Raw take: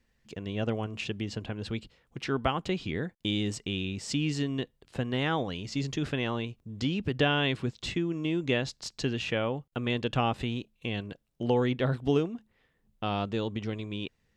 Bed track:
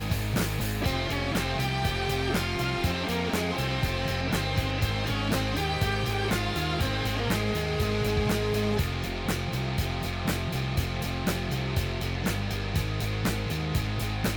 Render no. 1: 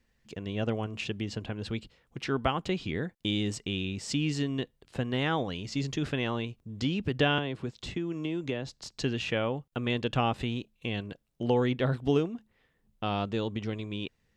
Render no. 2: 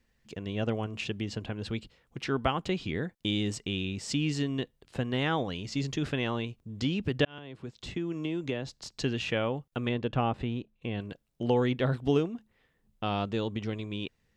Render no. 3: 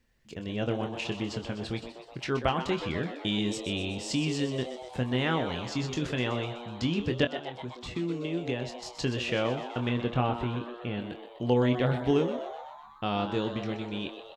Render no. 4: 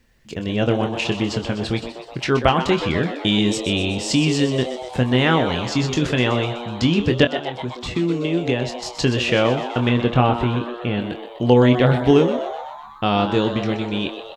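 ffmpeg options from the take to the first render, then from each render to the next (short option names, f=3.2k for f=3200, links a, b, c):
-filter_complex "[0:a]asettb=1/sr,asplit=3[a][b][c];[a]atrim=end=7.384[d];[b]atrim=start=7.38:end=8.98,asetpts=PTS-STARTPTS,afade=t=in:d=0.004:c=qsin,afade=t=out:st=1.596:d=0.004:c=qsin,acrossover=split=370|1100[e][f][g];[e]acompressor=threshold=-34dB:ratio=4[h];[f]acompressor=threshold=-35dB:ratio=4[i];[g]acompressor=threshold=-41dB:ratio=4[j];[h][i][j]amix=inputs=3:normalize=0[k];[c]atrim=start=8.976[l];[d][k]acrossfade=d=0.004:c1=hsin:c2=qsin[m];[m][l]acrossfade=d=0.004:c1=qsin:c2=hsin"
-filter_complex "[0:a]asettb=1/sr,asplit=3[a][b][c];[a]atrim=end=9.894[d];[b]atrim=start=9.89:end=11,asetpts=PTS-STARTPTS,afade=t=in:d=0.004:c=qsin,afade=t=out:st=1.106:d=0.004:c=qsin,lowpass=f=1.5k:p=1[e];[c]atrim=start=10.996[f];[d][e]acrossfade=d=0.004:c1=hsin:c2=qsin[g];[g][f]acrossfade=d=0.004:c1=qsin:c2=hsin,asplit=2[h][i];[h]atrim=end=7.25,asetpts=PTS-STARTPTS,afade=t=out:st=7.246:d=0.004:c=hsin[j];[i]atrim=start=7.25,asetpts=PTS-STARTPTS,afade=t=in:d=0.77[k];[j][k]concat=n=2:v=0:a=1"
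-filter_complex "[0:a]asplit=2[a][b];[b]adelay=24,volume=-8dB[c];[a][c]amix=inputs=2:normalize=0,asplit=9[d][e][f][g][h][i][j][k][l];[e]adelay=125,afreqshift=120,volume=-10.5dB[m];[f]adelay=250,afreqshift=240,volume=-14.5dB[n];[g]adelay=375,afreqshift=360,volume=-18.5dB[o];[h]adelay=500,afreqshift=480,volume=-22.5dB[p];[i]adelay=625,afreqshift=600,volume=-26.6dB[q];[j]adelay=750,afreqshift=720,volume=-30.6dB[r];[k]adelay=875,afreqshift=840,volume=-34.6dB[s];[l]adelay=1000,afreqshift=960,volume=-38.6dB[t];[d][m][n][o][p][q][r][s][t]amix=inputs=9:normalize=0"
-af "volume=11dB,alimiter=limit=-2dB:level=0:latency=1"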